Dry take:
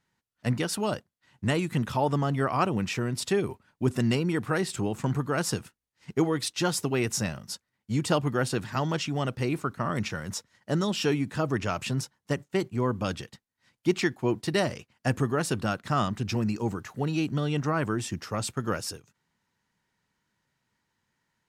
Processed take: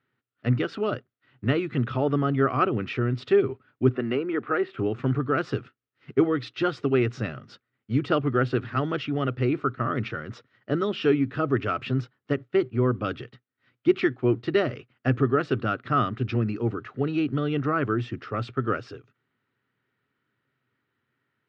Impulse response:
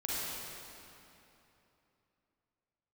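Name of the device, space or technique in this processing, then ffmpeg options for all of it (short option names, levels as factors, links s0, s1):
guitar cabinet: -filter_complex "[0:a]asettb=1/sr,asplit=3[s0][s1][s2];[s0]atrim=end=3.894[s3];[s1]atrim=start=3.89:end=4.79,asetpts=PTS-STARTPTS,afade=t=in:d=0.004:c=qsin,afade=t=out:st=0.896:d=0.004:c=qsin,acrossover=split=240 3100:gain=0.126 1 0.126[s4][s5][s6];[s4][s5][s6]amix=inputs=3:normalize=0[s7];[s2]atrim=start=4.786[s8];[s3][s7]acrossfade=d=0.004:c1=hsin:c2=qsin[s9];[s9][s8]acrossfade=d=0.004:c1=qsin:c2=hsin,highpass=110,equalizer=f=120:t=q:w=4:g=9,equalizer=f=180:t=q:w=4:g=-9,equalizer=f=270:t=q:w=4:g=6,equalizer=f=400:t=q:w=4:g=7,equalizer=f=920:t=q:w=4:g=-10,equalizer=f=1300:t=q:w=4:g=8,lowpass=f=3400:w=0.5412,lowpass=f=3400:w=1.3066"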